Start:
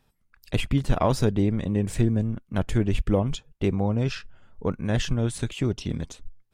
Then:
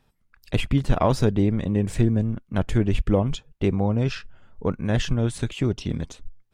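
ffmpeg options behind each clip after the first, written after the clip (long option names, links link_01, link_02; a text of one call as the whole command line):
ffmpeg -i in.wav -af "highshelf=frequency=6400:gain=-5.5,volume=2dB" out.wav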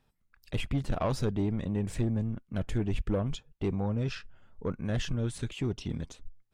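ffmpeg -i in.wav -af "asoftclip=type=tanh:threshold=-15dB,volume=-6.5dB" out.wav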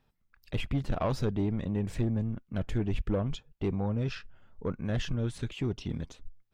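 ffmpeg -i in.wav -af "equalizer=frequency=9000:width=1.1:gain=-7" out.wav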